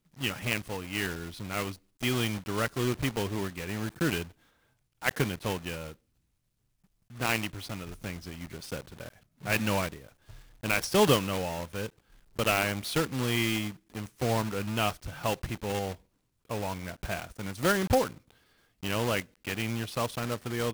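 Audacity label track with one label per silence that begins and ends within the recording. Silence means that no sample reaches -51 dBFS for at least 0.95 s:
5.940000	7.100000	silence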